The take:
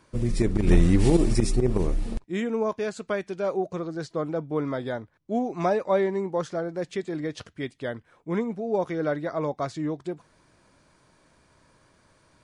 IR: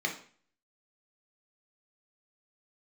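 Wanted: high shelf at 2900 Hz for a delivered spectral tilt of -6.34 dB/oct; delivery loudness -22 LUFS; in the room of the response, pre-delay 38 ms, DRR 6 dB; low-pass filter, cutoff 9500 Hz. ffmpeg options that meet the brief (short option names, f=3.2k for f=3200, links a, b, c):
-filter_complex "[0:a]lowpass=9.5k,highshelf=f=2.9k:g=5.5,asplit=2[a][b];[1:a]atrim=start_sample=2205,adelay=38[c];[b][c]afir=irnorm=-1:irlink=0,volume=-13dB[d];[a][d]amix=inputs=2:normalize=0,volume=4.5dB"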